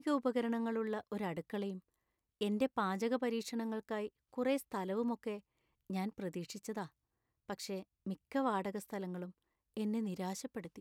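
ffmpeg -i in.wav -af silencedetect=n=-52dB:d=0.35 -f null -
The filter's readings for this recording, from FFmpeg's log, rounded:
silence_start: 1.79
silence_end: 2.41 | silence_duration: 0.62
silence_start: 5.40
silence_end: 5.90 | silence_duration: 0.50
silence_start: 6.87
silence_end: 7.49 | silence_duration: 0.62
silence_start: 9.31
silence_end: 9.77 | silence_duration: 0.46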